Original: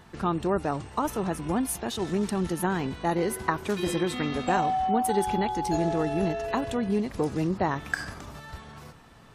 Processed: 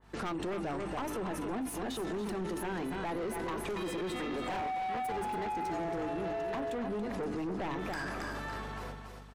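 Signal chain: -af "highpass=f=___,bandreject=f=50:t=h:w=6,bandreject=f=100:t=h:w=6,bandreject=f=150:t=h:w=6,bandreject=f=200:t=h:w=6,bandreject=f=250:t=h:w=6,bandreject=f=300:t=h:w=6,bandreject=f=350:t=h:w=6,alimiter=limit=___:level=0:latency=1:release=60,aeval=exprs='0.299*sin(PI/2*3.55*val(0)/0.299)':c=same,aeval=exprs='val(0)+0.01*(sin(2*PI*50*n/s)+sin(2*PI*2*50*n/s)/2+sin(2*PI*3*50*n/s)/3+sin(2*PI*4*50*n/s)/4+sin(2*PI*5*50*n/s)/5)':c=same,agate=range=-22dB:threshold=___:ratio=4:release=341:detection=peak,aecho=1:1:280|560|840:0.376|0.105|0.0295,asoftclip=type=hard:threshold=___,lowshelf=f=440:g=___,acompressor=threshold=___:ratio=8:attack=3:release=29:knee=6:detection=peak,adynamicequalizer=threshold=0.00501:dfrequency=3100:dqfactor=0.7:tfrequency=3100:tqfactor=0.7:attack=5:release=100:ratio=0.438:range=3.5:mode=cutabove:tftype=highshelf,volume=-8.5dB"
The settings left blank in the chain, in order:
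250, -10.5dB, -30dB, -14.5dB, 3.5, -26dB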